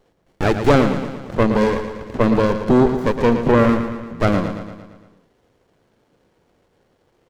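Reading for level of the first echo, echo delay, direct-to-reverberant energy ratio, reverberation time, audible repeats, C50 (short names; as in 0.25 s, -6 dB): -9.0 dB, 0.114 s, none, none, 6, none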